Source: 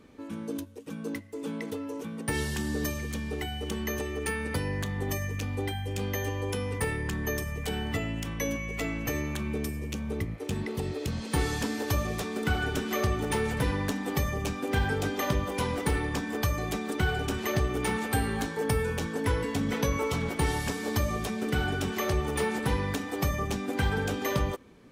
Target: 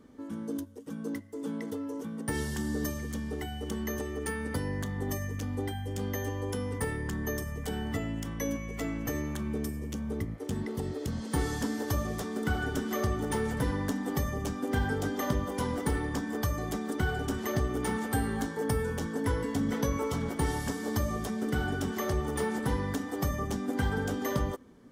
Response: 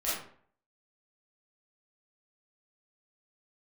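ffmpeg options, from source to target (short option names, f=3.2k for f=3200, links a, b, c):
-af "equalizer=f=250:t=o:w=0.33:g=6,equalizer=f=2.5k:t=o:w=0.33:g=-12,equalizer=f=4k:t=o:w=0.33:g=-5,volume=-2.5dB"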